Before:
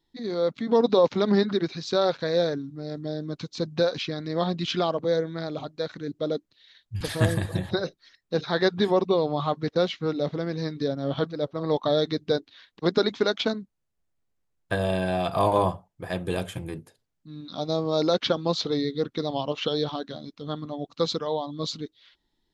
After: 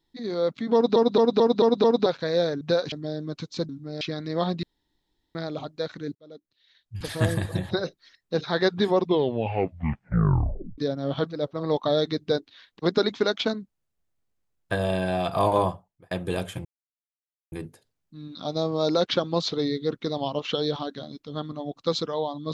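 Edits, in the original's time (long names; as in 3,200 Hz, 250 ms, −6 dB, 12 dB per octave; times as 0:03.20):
0:00.74: stutter in place 0.22 s, 6 plays
0:02.61–0:02.93: swap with 0:03.70–0:04.01
0:04.63–0:05.35: fill with room tone
0:06.15–0:07.40: fade in
0:08.98: tape stop 1.80 s
0:15.60–0:16.11: fade out
0:16.65: splice in silence 0.87 s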